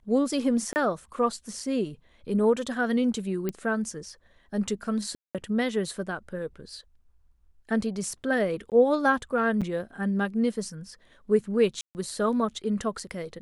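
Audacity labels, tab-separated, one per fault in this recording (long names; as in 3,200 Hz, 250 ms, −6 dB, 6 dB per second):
0.730000	0.760000	drop-out 29 ms
3.490000	3.490000	click −16 dBFS
5.150000	5.350000	drop-out 197 ms
8.700000	8.720000	drop-out 18 ms
9.610000	9.620000	drop-out 6.7 ms
11.810000	11.950000	drop-out 139 ms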